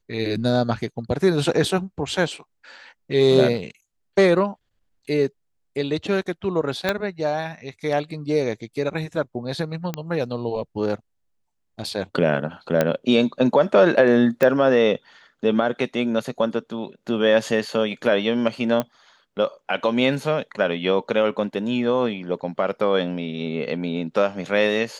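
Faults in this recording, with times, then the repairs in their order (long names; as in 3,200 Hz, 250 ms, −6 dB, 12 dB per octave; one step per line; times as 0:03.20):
0:06.89: click −7 dBFS
0:09.94: click −12 dBFS
0:12.81: click −6 dBFS
0:14.43: click −8 dBFS
0:18.80: click −10 dBFS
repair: click removal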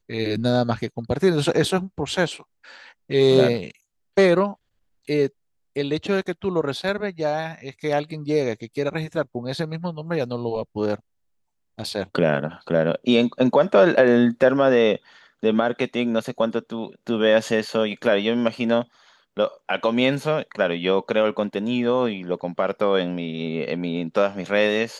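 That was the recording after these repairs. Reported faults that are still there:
0:06.89: click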